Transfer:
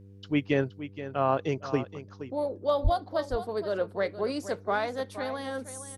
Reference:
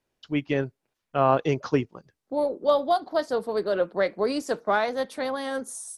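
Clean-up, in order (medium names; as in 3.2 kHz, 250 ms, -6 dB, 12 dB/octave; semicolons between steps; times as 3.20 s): de-hum 98.6 Hz, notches 5; 2.83–2.95 s: high-pass 140 Hz 24 dB/octave; inverse comb 472 ms -12.5 dB; trim 0 dB, from 0.79 s +5 dB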